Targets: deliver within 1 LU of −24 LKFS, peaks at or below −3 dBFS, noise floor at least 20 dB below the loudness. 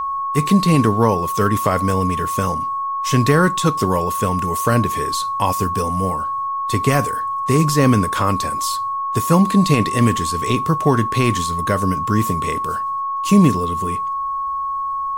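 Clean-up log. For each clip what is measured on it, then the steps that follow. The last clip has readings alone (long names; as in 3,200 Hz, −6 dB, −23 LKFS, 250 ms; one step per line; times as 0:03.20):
interfering tone 1,100 Hz; level of the tone −20 dBFS; integrated loudness −18.0 LKFS; sample peak −3.0 dBFS; target loudness −24.0 LKFS
→ notch filter 1,100 Hz, Q 30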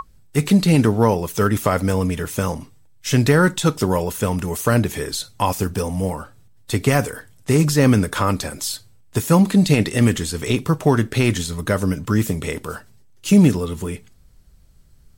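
interfering tone none found; integrated loudness −19.5 LKFS; sample peak −4.0 dBFS; target loudness −24.0 LKFS
→ level −4.5 dB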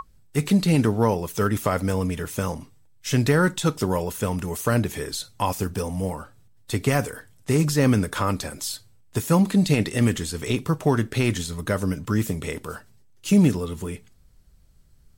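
integrated loudness −24.0 LKFS; sample peak −8.5 dBFS; background noise floor −54 dBFS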